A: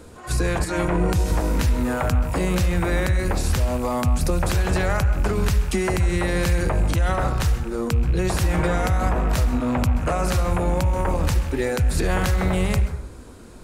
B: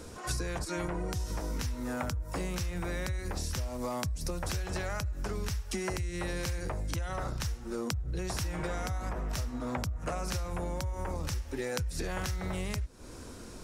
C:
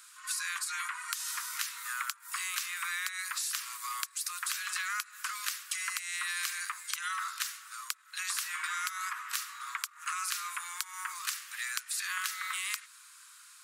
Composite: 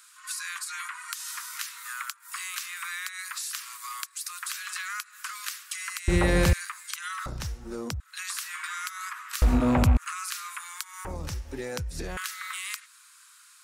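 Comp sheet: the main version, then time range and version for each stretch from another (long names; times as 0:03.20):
C
0:06.08–0:06.53: punch in from A
0:07.26–0:08.00: punch in from B
0:09.42–0:09.97: punch in from A
0:11.05–0:12.17: punch in from B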